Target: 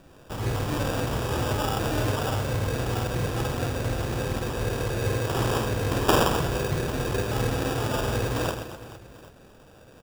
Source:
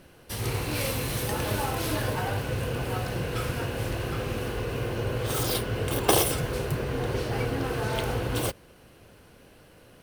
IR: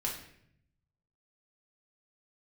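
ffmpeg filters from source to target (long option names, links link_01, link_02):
-af "acrusher=samples=21:mix=1:aa=0.000001,aecho=1:1:50|130|258|462.8|790.5:0.631|0.398|0.251|0.158|0.1"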